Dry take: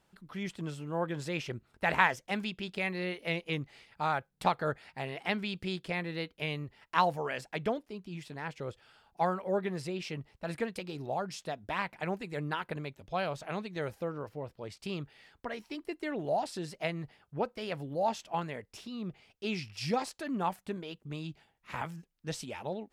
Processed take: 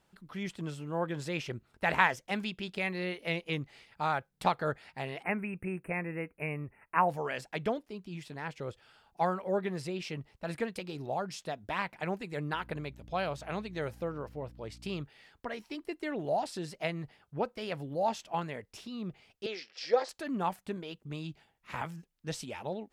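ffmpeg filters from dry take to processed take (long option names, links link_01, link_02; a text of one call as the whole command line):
ffmpeg -i in.wav -filter_complex "[0:a]asplit=3[link_01][link_02][link_03];[link_01]afade=type=out:start_time=5.22:duration=0.02[link_04];[link_02]asuperstop=centerf=4800:order=20:qfactor=0.85,afade=type=in:start_time=5.22:duration=0.02,afade=type=out:start_time=7.08:duration=0.02[link_05];[link_03]afade=type=in:start_time=7.08:duration=0.02[link_06];[link_04][link_05][link_06]amix=inputs=3:normalize=0,asettb=1/sr,asplit=3[link_07][link_08][link_09];[link_07]atrim=end=12.534[link_10];[link_08]atrim=start=12.53:end=15.03,asetpts=PTS-STARTPTS,afade=type=in:duration=0.004:curve=qsin,afade=type=out:start_time=2.496:duration=0.004:curve=qsin,aeval=exprs='val(0)+0.00251*(sin(2*PI*60*n/s)+sin(2*PI*2*60*n/s)/2+sin(2*PI*3*60*n/s)/3+sin(2*PI*4*60*n/s)/4+sin(2*PI*5*60*n/s)/5)':channel_layout=same[link_11];[link_09]atrim=start=15.026[link_12];[link_10][link_11]acrossfade=duration=0.004:curve1=hsin:curve2=qsin[link_13];[link_13][link_12]acrossfade=duration=0.004:curve1=qsin:curve2=hsin,asettb=1/sr,asplit=3[link_14][link_15][link_16];[link_14]atrim=end=19.464[link_17];[link_15]atrim=start=19.46:end=20.09,asetpts=PTS-STARTPTS,afade=type=in:duration=0.004:curve=qsin,afade=type=out:start_time=0.626:duration=0.004:curve=qsin,highpass=frequency=360:width=0.5412,highpass=frequency=360:width=1.3066,equalizer=frequency=510:width_type=q:width=4:gain=9,equalizer=frequency=960:width_type=q:width=4:gain=-4,equalizer=frequency=1700:width_type=q:width=4:gain=5,equalizer=frequency=2600:width_type=q:width=4:gain=-7,lowpass=frequency=5700:width=0.5412,lowpass=frequency=5700:width=1.3066[link_18];[link_16]atrim=start=20.086[link_19];[link_17][link_18]acrossfade=duration=0.004:curve1=hsin:curve2=qsin[link_20];[link_20][link_19]acrossfade=duration=0.004:curve1=qsin:curve2=hsin" out.wav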